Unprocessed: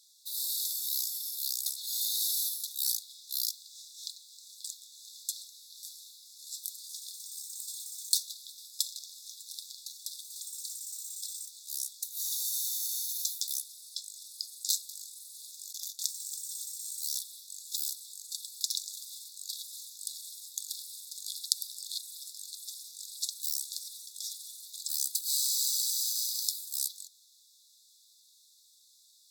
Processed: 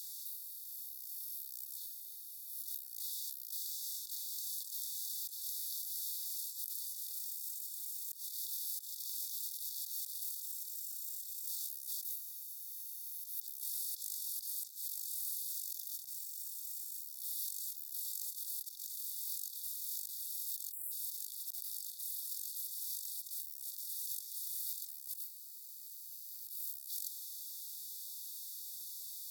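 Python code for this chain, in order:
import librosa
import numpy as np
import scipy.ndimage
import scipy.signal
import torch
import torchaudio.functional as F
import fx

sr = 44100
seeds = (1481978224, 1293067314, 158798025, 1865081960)

y = fx.bin_compress(x, sr, power=0.6)
y = fx.over_compress(y, sr, threshold_db=-39.0, ratio=-1.0)
y = scipy.signal.sosfilt(scipy.signal.butter(4, 280.0, 'highpass', fs=sr, output='sos'), y)
y = y + 0.37 * np.pad(y, (int(1.1 * sr / 1000.0), 0))[:len(y)]
y = fx.echo_tape(y, sr, ms=395, feedback_pct=85, wet_db=-15.0, lp_hz=1700.0, drive_db=19.0, wow_cents=19)
y = fx.spec_erase(y, sr, start_s=20.72, length_s=0.2, low_hz=2500.0, high_hz=7300.0)
y = fx.graphic_eq_10(y, sr, hz=(2000, 4000, 8000, 16000), db=(-10, -8, -8, 7))
y = F.gain(torch.from_numpy(y), -4.5).numpy()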